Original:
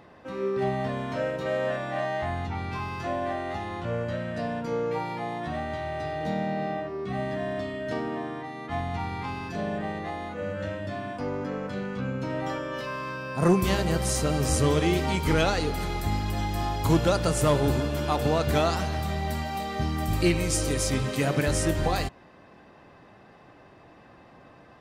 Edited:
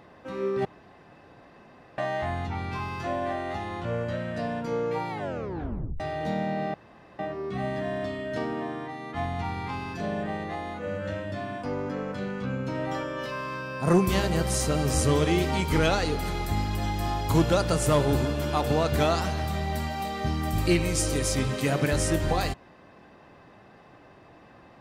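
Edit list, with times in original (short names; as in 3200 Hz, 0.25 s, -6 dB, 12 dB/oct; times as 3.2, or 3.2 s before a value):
0.65–1.98 room tone
5.09 tape stop 0.91 s
6.74 insert room tone 0.45 s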